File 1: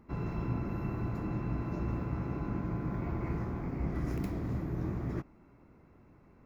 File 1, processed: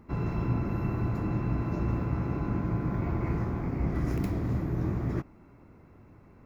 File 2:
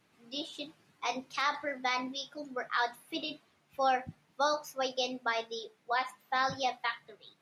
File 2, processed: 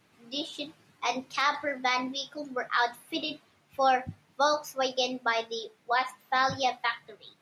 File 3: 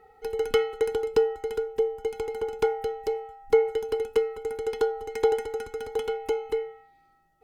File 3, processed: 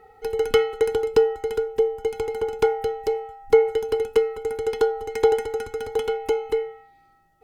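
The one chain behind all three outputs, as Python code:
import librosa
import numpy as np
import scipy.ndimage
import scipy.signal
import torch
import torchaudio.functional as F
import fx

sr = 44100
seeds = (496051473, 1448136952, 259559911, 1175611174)

y = fx.peak_eq(x, sr, hz=100.0, db=6.0, octaves=0.27)
y = F.gain(torch.from_numpy(y), 4.5).numpy()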